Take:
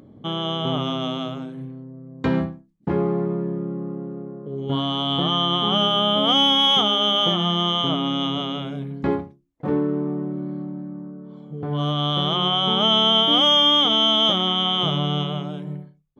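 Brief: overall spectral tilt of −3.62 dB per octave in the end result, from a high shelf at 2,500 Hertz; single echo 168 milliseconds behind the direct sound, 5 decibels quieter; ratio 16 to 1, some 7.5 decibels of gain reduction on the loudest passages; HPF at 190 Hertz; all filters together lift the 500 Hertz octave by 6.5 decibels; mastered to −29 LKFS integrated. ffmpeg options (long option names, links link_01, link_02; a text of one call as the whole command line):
ffmpeg -i in.wav -af "highpass=190,equalizer=frequency=500:width_type=o:gain=9,highshelf=frequency=2500:gain=-5,acompressor=threshold=-20dB:ratio=16,aecho=1:1:168:0.562,volume=-4.5dB" out.wav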